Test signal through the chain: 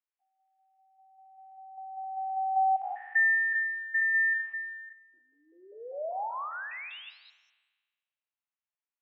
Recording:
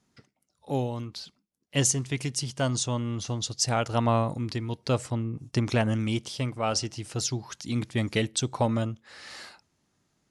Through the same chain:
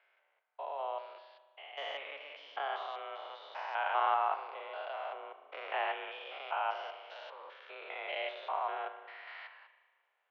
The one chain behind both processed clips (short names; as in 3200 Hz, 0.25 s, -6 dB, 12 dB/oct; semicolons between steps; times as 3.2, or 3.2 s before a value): stepped spectrum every 0.2 s; spring tank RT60 1.4 s, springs 36 ms, chirp 45 ms, DRR 9.5 dB; mistuned SSB +150 Hz 480–2900 Hz